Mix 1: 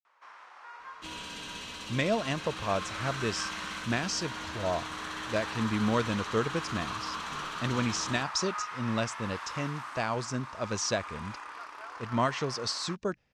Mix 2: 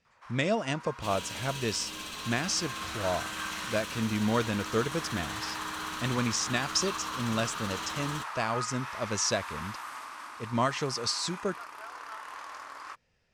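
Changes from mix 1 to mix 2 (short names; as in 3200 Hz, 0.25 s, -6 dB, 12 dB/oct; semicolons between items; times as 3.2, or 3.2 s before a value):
speech: entry -1.60 s; master: remove air absorption 56 m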